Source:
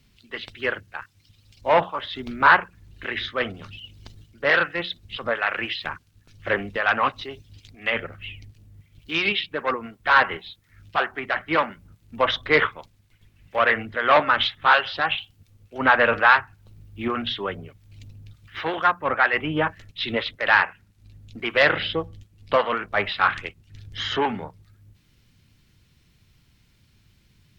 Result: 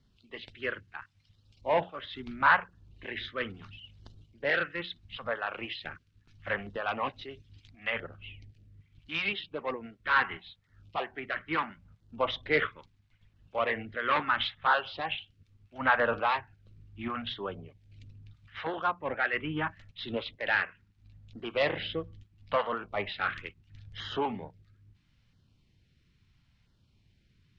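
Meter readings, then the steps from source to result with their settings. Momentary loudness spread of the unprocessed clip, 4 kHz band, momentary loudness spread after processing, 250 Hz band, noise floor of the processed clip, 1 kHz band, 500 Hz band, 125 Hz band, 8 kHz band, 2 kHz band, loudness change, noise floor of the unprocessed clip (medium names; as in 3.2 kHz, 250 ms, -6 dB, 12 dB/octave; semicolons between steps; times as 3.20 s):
18 LU, -10.0 dB, 19 LU, -8.0 dB, -69 dBFS, -9.0 dB, -8.5 dB, -7.0 dB, no reading, -9.5 dB, -9.5 dB, -61 dBFS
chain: LFO notch saw down 0.75 Hz 290–2600 Hz; Bessel low-pass 4 kHz, order 2; trim -7 dB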